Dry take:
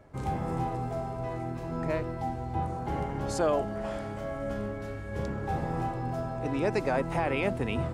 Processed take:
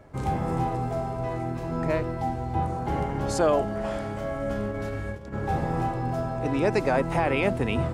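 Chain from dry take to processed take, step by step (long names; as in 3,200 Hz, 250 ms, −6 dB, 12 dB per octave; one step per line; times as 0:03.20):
0:04.71–0:05.34: compressor whose output falls as the input rises −37 dBFS, ratio −0.5
level +4.5 dB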